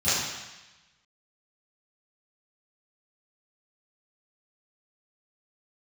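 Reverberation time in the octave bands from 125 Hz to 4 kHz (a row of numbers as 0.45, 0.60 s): 1.1, 1.0, 1.0, 1.1, 1.2, 1.2 s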